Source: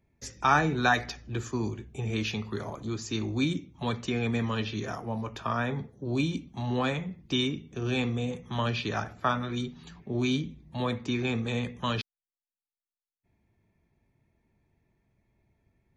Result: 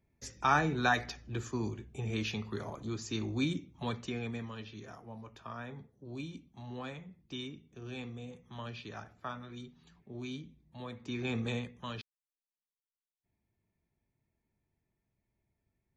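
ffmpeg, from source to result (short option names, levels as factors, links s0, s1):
-af "volume=2.11,afade=t=out:st=3.74:d=0.79:silence=0.334965,afade=t=in:st=10.95:d=0.53:silence=0.281838,afade=t=out:st=11.48:d=0.2:silence=0.375837"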